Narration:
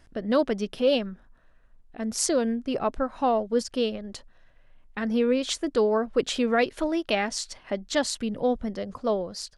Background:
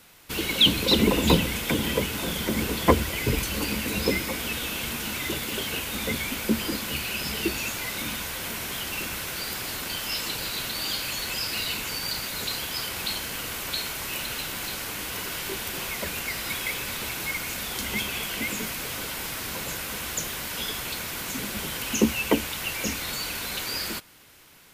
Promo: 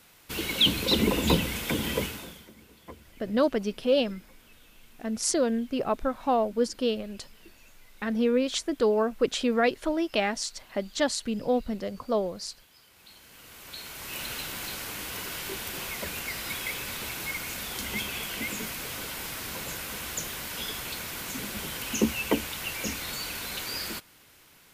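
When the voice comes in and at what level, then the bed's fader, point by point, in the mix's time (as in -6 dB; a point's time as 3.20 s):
3.05 s, -1.0 dB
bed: 2.05 s -3.5 dB
2.55 s -27 dB
12.85 s -27 dB
14.24 s -3.5 dB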